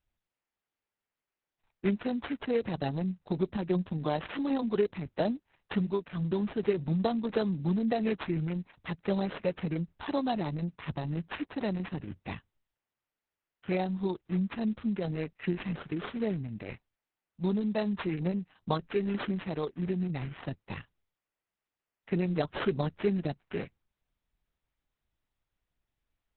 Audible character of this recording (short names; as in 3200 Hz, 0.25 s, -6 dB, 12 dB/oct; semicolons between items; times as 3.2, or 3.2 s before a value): aliases and images of a low sample rate 4600 Hz, jitter 0%; Opus